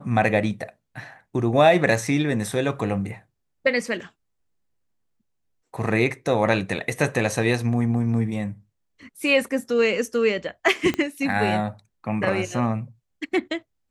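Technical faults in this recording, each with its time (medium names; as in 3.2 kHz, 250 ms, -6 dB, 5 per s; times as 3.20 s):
10.94 s: pop -12 dBFS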